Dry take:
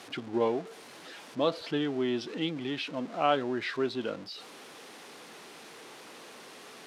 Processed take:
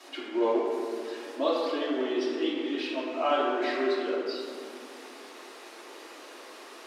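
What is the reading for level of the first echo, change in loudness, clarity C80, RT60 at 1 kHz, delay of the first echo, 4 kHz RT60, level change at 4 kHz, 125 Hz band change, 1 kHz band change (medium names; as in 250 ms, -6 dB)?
no echo, +2.0 dB, 1.0 dB, 2.1 s, no echo, 1.2 s, +0.5 dB, under -20 dB, +2.0 dB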